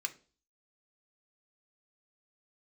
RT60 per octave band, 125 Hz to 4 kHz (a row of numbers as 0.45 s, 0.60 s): 0.45 s, 0.50 s, 0.45 s, 0.35 s, 0.30 s, 0.40 s